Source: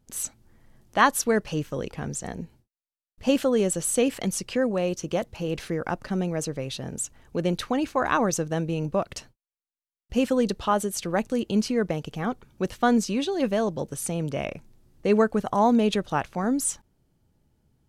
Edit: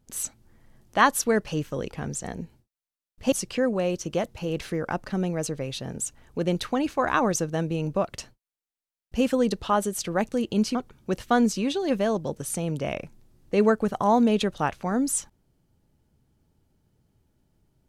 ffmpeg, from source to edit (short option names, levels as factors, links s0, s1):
-filter_complex "[0:a]asplit=3[s0][s1][s2];[s0]atrim=end=3.322[s3];[s1]atrim=start=4.298:end=11.732[s4];[s2]atrim=start=12.268[s5];[s3][s4]acrossfade=d=0.004:c1=hsin:c2=hsin[s6];[s6][s5]acrossfade=d=0.004:c1=hsin:c2=hsin"